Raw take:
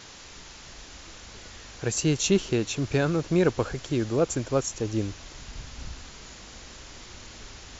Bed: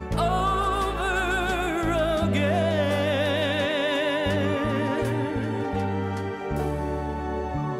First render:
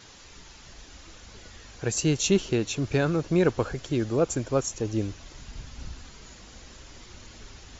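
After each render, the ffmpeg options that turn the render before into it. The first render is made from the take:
ffmpeg -i in.wav -af "afftdn=noise_reduction=6:noise_floor=-46" out.wav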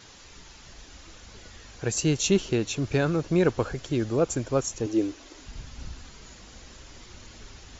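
ffmpeg -i in.wav -filter_complex "[0:a]asettb=1/sr,asplit=3[link_01][link_02][link_03];[link_01]atrim=end=4.864[link_04];[link_02]atrim=start=4.86:end=5.46,asetpts=PTS-STARTPTS,afade=type=in:duration=0.004:curve=qsin,afade=type=out:start_time=0.596:duration=0.004:curve=qsin,lowshelf=frequency=220:width_type=q:width=3:gain=-10[link_05];[link_03]atrim=start=5.456[link_06];[link_04][link_05]acrossfade=duration=0.004:curve1=hsin:curve2=qsin[link_07];[link_07][link_06]acrossfade=duration=0.004:curve1=qsin:curve2=hsin" out.wav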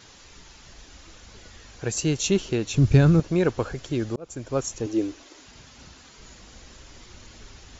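ffmpeg -i in.wav -filter_complex "[0:a]asettb=1/sr,asplit=3[link_01][link_02][link_03];[link_01]atrim=end=2.744[link_04];[link_02]atrim=start=2.74:end=3.2,asetpts=PTS-STARTPTS,afade=type=in:duration=0.004:curve=qsin,afade=type=out:start_time=0.456:duration=0.004:curve=qsin,bass=frequency=250:gain=14,treble=frequency=4000:gain=3[link_05];[link_03]atrim=start=3.196[link_06];[link_04][link_05]acrossfade=duration=0.004:curve1=hsin:curve2=qsin[link_07];[link_07][link_06]acrossfade=duration=0.004:curve1=qsin:curve2=hsin,asettb=1/sr,asplit=3[link_08][link_09][link_10];[link_08]atrim=end=5.234[link_11];[link_09]atrim=start=5.23:end=6.18,asetpts=PTS-STARTPTS,afade=type=in:duration=0.004:curve=qsin,afade=type=out:start_time=0.946:duration=0.004:curve=qsin,highpass=frequency=250:poles=1[link_12];[link_10]atrim=start=6.176[link_13];[link_11][link_12]acrossfade=duration=0.004:curve1=hsin:curve2=qsin[link_14];[link_14][link_13]acrossfade=duration=0.004:curve1=qsin:curve2=hsin,asplit=2[link_15][link_16];[link_15]atrim=end=4.16,asetpts=PTS-STARTPTS,afade=type=out:start_time=4.156:duration=0.004:curve=hsin[link_17];[link_16]atrim=start=4.16,asetpts=PTS-STARTPTS,afade=type=in:duration=0.45[link_18];[link_17][link_18]concat=n=2:v=0:a=1" out.wav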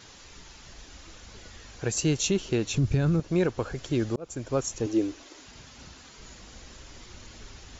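ffmpeg -i in.wav -af "alimiter=limit=-15.5dB:level=0:latency=1:release=257" out.wav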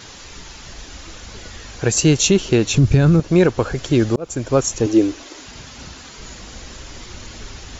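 ffmpeg -i in.wav -af "volume=11dB" out.wav

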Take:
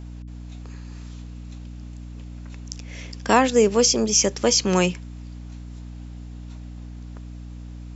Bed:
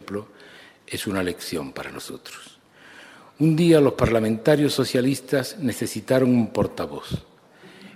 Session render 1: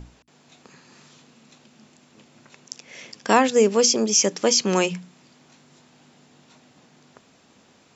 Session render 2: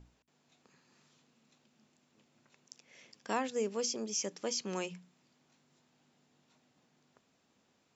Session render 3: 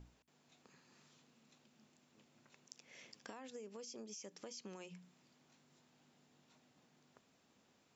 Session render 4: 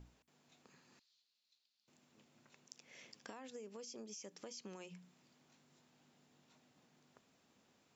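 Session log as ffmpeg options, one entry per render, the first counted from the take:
ffmpeg -i in.wav -af "bandreject=frequency=60:width_type=h:width=6,bandreject=frequency=120:width_type=h:width=6,bandreject=frequency=180:width_type=h:width=6,bandreject=frequency=240:width_type=h:width=6,bandreject=frequency=300:width_type=h:width=6" out.wav
ffmpeg -i in.wav -af "volume=-17dB" out.wav
ffmpeg -i in.wav -af "alimiter=level_in=6.5dB:limit=-24dB:level=0:latency=1:release=97,volume=-6.5dB,acompressor=threshold=-48dB:ratio=8" out.wav
ffmpeg -i in.wav -filter_complex "[0:a]asettb=1/sr,asplit=3[link_01][link_02][link_03];[link_01]atrim=end=0.994[link_04];[link_02]atrim=start=0.99:end=1.88,asetpts=PTS-STARTPTS,afade=type=in:duration=0.004:curve=qsin,afade=type=out:start_time=0.886:duration=0.004:curve=qsin,bandpass=frequency=4300:width_type=q:width=4.3[link_05];[link_03]atrim=start=1.876[link_06];[link_04][link_05]acrossfade=duration=0.004:curve1=hsin:curve2=qsin[link_07];[link_07][link_06]acrossfade=duration=0.004:curve1=qsin:curve2=hsin" out.wav

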